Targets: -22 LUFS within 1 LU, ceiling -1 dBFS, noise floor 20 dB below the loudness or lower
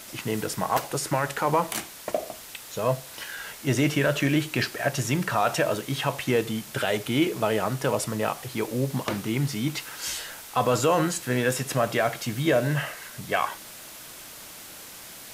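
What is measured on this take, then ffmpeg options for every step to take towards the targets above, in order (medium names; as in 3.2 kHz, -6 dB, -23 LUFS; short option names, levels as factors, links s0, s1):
noise floor -43 dBFS; noise floor target -47 dBFS; loudness -26.5 LUFS; peak level -10.0 dBFS; loudness target -22.0 LUFS
-> -af "afftdn=nr=6:nf=-43"
-af "volume=1.68"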